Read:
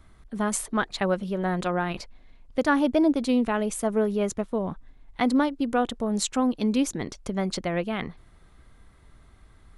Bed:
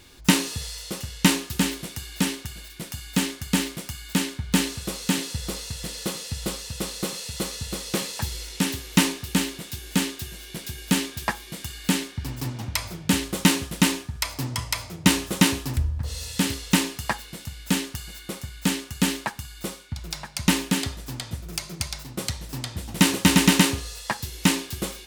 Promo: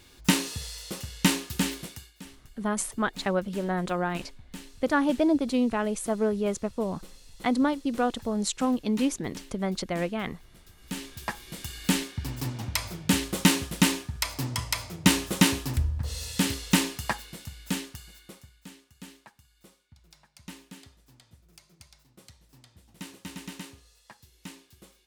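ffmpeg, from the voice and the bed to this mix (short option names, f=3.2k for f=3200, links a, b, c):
-filter_complex "[0:a]adelay=2250,volume=-2dB[a];[1:a]volume=15.5dB,afade=t=out:st=1.83:d=0.3:silence=0.133352,afade=t=in:st=10.76:d=1.01:silence=0.105925,afade=t=out:st=16.91:d=1.74:silence=0.0841395[b];[a][b]amix=inputs=2:normalize=0"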